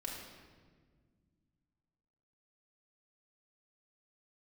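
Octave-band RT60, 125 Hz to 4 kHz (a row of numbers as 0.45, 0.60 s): 3.0, 2.9, 1.9, 1.4, 1.3, 1.1 s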